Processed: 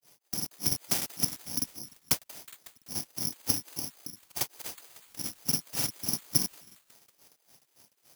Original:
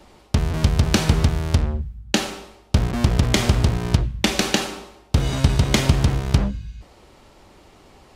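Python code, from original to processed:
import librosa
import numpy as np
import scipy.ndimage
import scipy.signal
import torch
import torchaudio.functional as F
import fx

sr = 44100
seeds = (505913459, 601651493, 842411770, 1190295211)

p1 = fx.granulator(x, sr, seeds[0], grain_ms=193.0, per_s=3.5, spray_ms=38.0, spread_st=0)
p2 = p1 + fx.echo_stepped(p1, sr, ms=184, hz=970.0, octaves=0.7, feedback_pct=70, wet_db=-10.0, dry=0)
p3 = fx.noise_vocoder(p2, sr, seeds[1], bands=4)
p4 = (np.kron(p3[::8], np.eye(8)[0]) * 8)[:len(p3)]
p5 = fx.buffer_crackle(p4, sr, first_s=0.37, period_s=0.3, block=2048, kind='repeat')
y = F.gain(torch.from_numpy(p5), -15.0).numpy()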